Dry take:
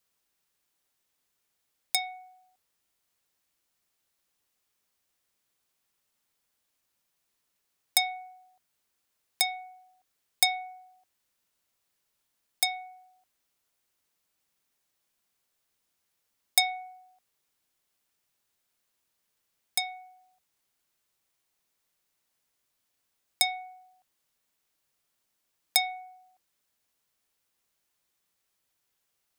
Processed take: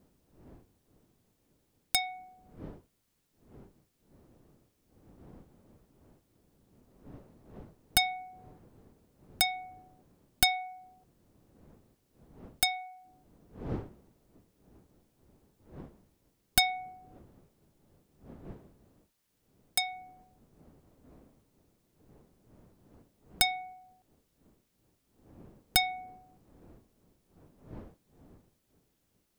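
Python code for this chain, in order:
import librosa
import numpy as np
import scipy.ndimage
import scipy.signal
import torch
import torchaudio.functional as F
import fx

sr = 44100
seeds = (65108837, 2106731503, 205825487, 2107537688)

y = np.minimum(x, 2.0 * 10.0 ** (-17.0 / 20.0) - x)
y = fx.dmg_wind(y, sr, seeds[0], corner_hz=320.0, level_db=-54.0)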